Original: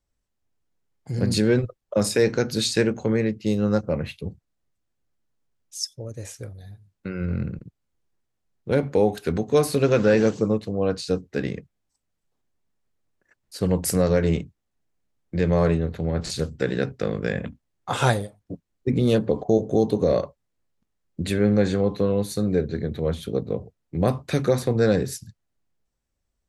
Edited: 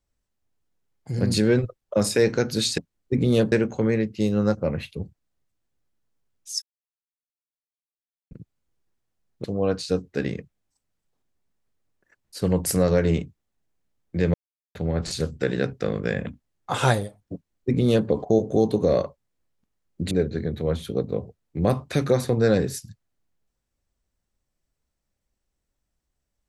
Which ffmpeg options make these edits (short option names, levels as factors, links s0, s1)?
-filter_complex "[0:a]asplit=9[s0][s1][s2][s3][s4][s5][s6][s7][s8];[s0]atrim=end=2.782[s9];[s1]atrim=start=18.528:end=19.272[s10];[s2]atrim=start=2.778:end=5.88,asetpts=PTS-STARTPTS,afade=t=out:st=3.098:d=0.004:c=hsin[s11];[s3]atrim=start=5.88:end=7.57,asetpts=PTS-STARTPTS,volume=0[s12];[s4]atrim=start=7.57:end=8.702,asetpts=PTS-STARTPTS,afade=t=in:d=0.004:c=hsin[s13];[s5]atrim=start=10.628:end=15.53,asetpts=PTS-STARTPTS,afade=t=out:st=4.898:d=0.004:c=hsin[s14];[s6]atrim=start=15.53:end=15.94,asetpts=PTS-STARTPTS,volume=0[s15];[s7]atrim=start=15.94:end=21.302,asetpts=PTS-STARTPTS,afade=t=in:d=0.004:c=hsin[s16];[s8]atrim=start=22.488[s17];[s9][s10]acrossfade=d=0.004:c1=hsin:c2=hsin[s18];[s11][s12][s13]concat=n=3:v=0:a=1[s19];[s18][s19]acrossfade=d=0.004:c1=hsin:c2=hsin[s20];[s14][s15][s16]concat=n=3:v=0:a=1[s21];[s20][s21]acrossfade=d=0.004:c1=hsin:c2=hsin[s22];[s22][s17]acrossfade=d=0.004:c1=hsin:c2=hsin"